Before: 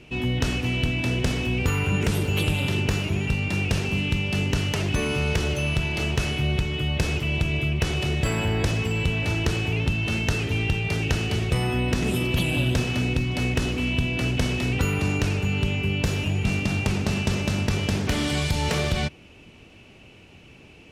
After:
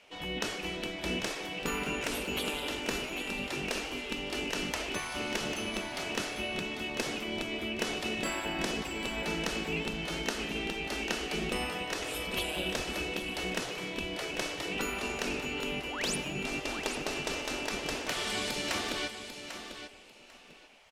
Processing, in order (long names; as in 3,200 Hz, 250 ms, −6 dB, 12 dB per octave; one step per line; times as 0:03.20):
sound drawn into the spectrogram rise, 0:15.86–0:16.16, 370–11,000 Hz −31 dBFS
on a send: repeating echo 795 ms, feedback 20%, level −9.5 dB
on the sum: gate on every frequency bin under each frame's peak −10 dB weak
level −4 dB